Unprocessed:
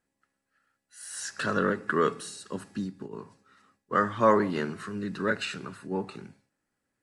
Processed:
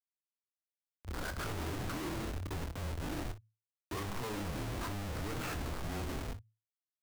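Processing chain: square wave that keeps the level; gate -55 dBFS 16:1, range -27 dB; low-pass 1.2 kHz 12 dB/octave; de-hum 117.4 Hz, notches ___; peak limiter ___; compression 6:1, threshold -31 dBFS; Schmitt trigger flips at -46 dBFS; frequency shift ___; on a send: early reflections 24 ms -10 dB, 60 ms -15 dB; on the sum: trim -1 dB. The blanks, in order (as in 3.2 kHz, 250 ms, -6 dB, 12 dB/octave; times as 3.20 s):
17, -20.5 dBFS, -110 Hz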